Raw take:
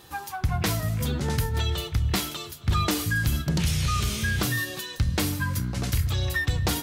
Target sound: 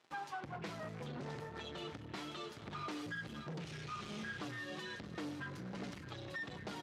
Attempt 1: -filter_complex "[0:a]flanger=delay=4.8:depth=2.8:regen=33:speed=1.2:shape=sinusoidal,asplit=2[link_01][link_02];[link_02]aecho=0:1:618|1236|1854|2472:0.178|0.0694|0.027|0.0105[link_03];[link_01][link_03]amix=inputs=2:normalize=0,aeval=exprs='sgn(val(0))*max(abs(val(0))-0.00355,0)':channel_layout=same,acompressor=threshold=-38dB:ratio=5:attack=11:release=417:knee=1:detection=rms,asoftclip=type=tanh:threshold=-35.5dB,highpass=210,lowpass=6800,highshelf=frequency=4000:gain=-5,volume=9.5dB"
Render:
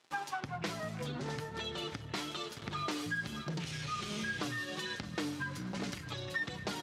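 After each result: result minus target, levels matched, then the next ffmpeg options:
soft clipping: distortion −10 dB; 8,000 Hz band +5.0 dB
-filter_complex "[0:a]flanger=delay=4.8:depth=2.8:regen=33:speed=1.2:shape=sinusoidal,asplit=2[link_01][link_02];[link_02]aecho=0:1:618|1236|1854|2472:0.178|0.0694|0.027|0.0105[link_03];[link_01][link_03]amix=inputs=2:normalize=0,aeval=exprs='sgn(val(0))*max(abs(val(0))-0.00355,0)':channel_layout=same,acompressor=threshold=-38dB:ratio=5:attack=11:release=417:knee=1:detection=rms,asoftclip=type=tanh:threshold=-46dB,highpass=210,lowpass=6800,highshelf=frequency=4000:gain=-5,volume=9.5dB"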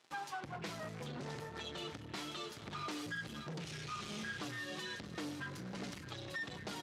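8,000 Hz band +5.5 dB
-filter_complex "[0:a]flanger=delay=4.8:depth=2.8:regen=33:speed=1.2:shape=sinusoidal,asplit=2[link_01][link_02];[link_02]aecho=0:1:618|1236|1854|2472:0.178|0.0694|0.027|0.0105[link_03];[link_01][link_03]amix=inputs=2:normalize=0,aeval=exprs='sgn(val(0))*max(abs(val(0))-0.00355,0)':channel_layout=same,acompressor=threshold=-38dB:ratio=5:attack=11:release=417:knee=1:detection=rms,asoftclip=type=tanh:threshold=-46dB,highpass=210,lowpass=6800,highshelf=frequency=4000:gain=-14,volume=9.5dB"

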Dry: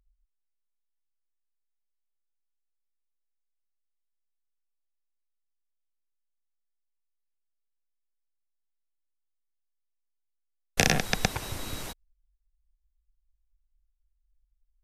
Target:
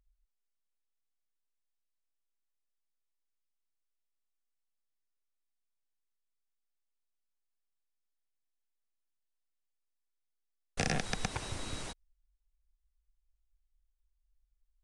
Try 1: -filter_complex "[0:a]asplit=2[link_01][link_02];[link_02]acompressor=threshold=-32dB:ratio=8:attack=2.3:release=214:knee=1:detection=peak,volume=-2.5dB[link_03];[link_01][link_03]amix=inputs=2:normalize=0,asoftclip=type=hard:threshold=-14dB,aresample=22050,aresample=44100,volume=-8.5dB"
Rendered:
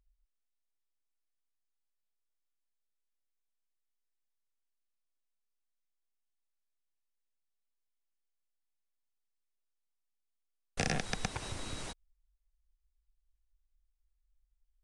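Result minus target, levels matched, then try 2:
downward compressor: peak gain reduction +6.5 dB
-filter_complex "[0:a]asplit=2[link_01][link_02];[link_02]acompressor=threshold=-24.5dB:ratio=8:attack=2.3:release=214:knee=1:detection=peak,volume=-2.5dB[link_03];[link_01][link_03]amix=inputs=2:normalize=0,asoftclip=type=hard:threshold=-14dB,aresample=22050,aresample=44100,volume=-8.5dB"

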